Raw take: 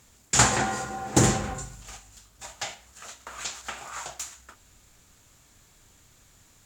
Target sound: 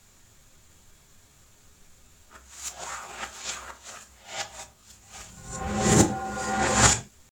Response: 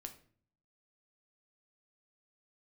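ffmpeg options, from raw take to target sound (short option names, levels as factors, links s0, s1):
-filter_complex "[0:a]areverse,atempo=0.91[s0];[1:a]atrim=start_sample=2205,afade=t=out:st=0.27:d=0.01,atrim=end_sample=12348,asetrate=61740,aresample=44100[s1];[s0][s1]afir=irnorm=-1:irlink=0,volume=2.66"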